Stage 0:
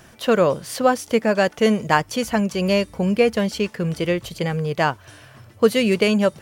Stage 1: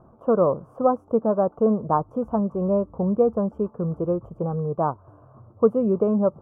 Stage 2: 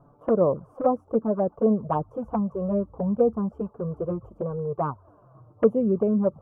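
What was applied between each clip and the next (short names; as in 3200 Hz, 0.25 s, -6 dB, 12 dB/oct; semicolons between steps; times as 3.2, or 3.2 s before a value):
elliptic low-pass 1200 Hz, stop band 40 dB; gain -2 dB
envelope flanger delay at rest 7.3 ms, full sweep at -15 dBFS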